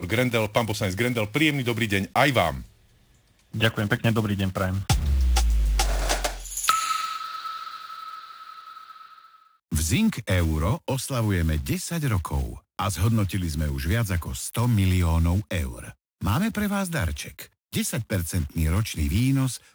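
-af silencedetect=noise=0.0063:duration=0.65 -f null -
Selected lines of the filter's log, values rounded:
silence_start: 2.68
silence_end: 3.53 | silence_duration: 0.86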